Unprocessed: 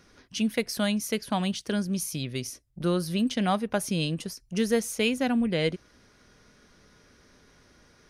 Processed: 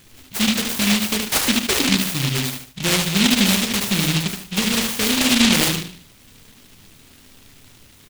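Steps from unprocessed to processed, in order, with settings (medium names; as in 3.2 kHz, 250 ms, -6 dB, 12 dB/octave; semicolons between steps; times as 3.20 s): 1.28–1.89 s: formants replaced by sine waves; peak limiter -18.5 dBFS, peak gain reduction 7 dB; feedback delay 74 ms, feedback 33%, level -5 dB; on a send at -7 dB: reverberation RT60 0.25 s, pre-delay 6 ms; on the sum: delay time shaken by noise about 3 kHz, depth 0.49 ms; trim +7.5 dB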